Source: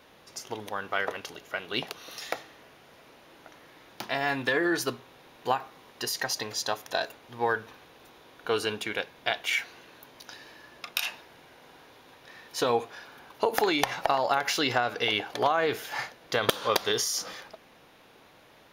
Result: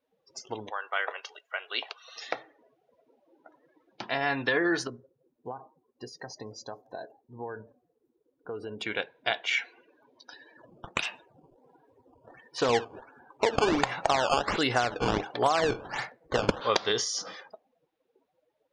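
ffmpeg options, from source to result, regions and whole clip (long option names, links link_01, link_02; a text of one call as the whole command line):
ffmpeg -i in.wav -filter_complex "[0:a]asettb=1/sr,asplit=3[link_01][link_02][link_03];[link_01]atrim=end=0.704[link_04];[link_02]atrim=start=0.7:end=2.16,asetpts=PTS-STARTPTS,afade=type=in:duration=0.004:curve=qsin,afade=type=out:start_time=1.456:duration=0.004:curve=qsin,highpass=650,acrusher=bits=8:mix=0:aa=0.5[link_05];[link_03]atrim=start=2.156[link_06];[link_04][link_05]acrossfade=duration=0.004:curve1=hsin:curve2=qsin[link_07];[link_07][link_06]acrossfade=duration=0.004:curve1=qsin:curve2=hsin,asettb=1/sr,asplit=3[link_08][link_09][link_10];[link_08]atrim=end=4.874[link_11];[link_09]atrim=start=4.87:end=8.8,asetpts=PTS-STARTPTS,afade=type=in:duration=0.004:curve=qsin,afade=type=out:start_time=3.926:duration=0.004:curve=qsin,equalizer=frequency=2900:width=0.37:gain=-14.5,acompressor=threshold=-35dB:ratio=2.5:attack=3.2:release=140:knee=1:detection=peak,asplit=4[link_12][link_13][link_14][link_15];[link_13]adelay=169,afreqshift=130,volume=-21.5dB[link_16];[link_14]adelay=338,afreqshift=260,volume=-28.4dB[link_17];[link_15]adelay=507,afreqshift=390,volume=-35.4dB[link_18];[link_12][link_16][link_17][link_18]amix=inputs=4:normalize=0,atrim=end_sample=173313[link_19];[link_10]atrim=start=8.796[link_20];[link_11][link_19]acrossfade=duration=0.004:curve1=hsin:curve2=qsin[link_21];[link_21][link_20]acrossfade=duration=0.004:curve1=qsin:curve2=hsin,asettb=1/sr,asplit=3[link_22][link_23][link_24];[link_22]atrim=end=10.574[link_25];[link_23]atrim=start=10.57:end=16.61,asetpts=PTS-STARTPTS,afade=type=in:duration=0.004:curve=qsin,afade=type=out:start_time=6.036:duration=0.004:curve=qsin,lowpass=8700,lowshelf=frequency=220:gain=3.5,acrusher=samples=13:mix=1:aa=0.000001:lfo=1:lforange=20.8:lforate=1.4[link_26];[link_24]atrim=start=16.606[link_27];[link_25][link_26]acrossfade=duration=0.004:curve1=hsin:curve2=qsin[link_28];[link_28][link_27]acrossfade=duration=0.004:curve1=qsin:curve2=hsin,acrossover=split=7800[link_29][link_30];[link_30]acompressor=threshold=-59dB:ratio=4:attack=1:release=60[link_31];[link_29][link_31]amix=inputs=2:normalize=0,afftdn=noise_reduction=30:noise_floor=-45" out.wav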